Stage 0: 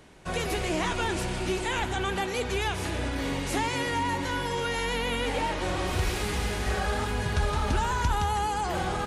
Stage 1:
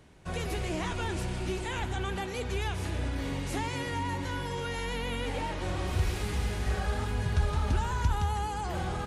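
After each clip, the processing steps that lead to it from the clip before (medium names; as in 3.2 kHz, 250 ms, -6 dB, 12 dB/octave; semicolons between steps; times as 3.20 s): peaking EQ 83 Hz +8 dB 2.3 oct; trim -6.5 dB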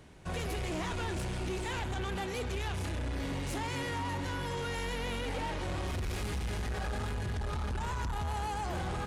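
peak limiter -23.5 dBFS, peak gain reduction 7.5 dB; saturation -33 dBFS, distortion -11 dB; trim +2 dB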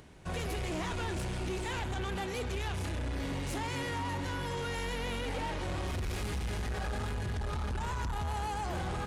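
upward compressor, threshold -55 dBFS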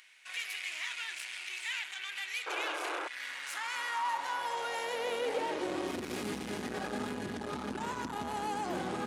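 high-pass sweep 2.2 kHz -> 250 Hz, 2.94–6.13 s; painted sound noise, 2.46–3.08 s, 300–1700 Hz -38 dBFS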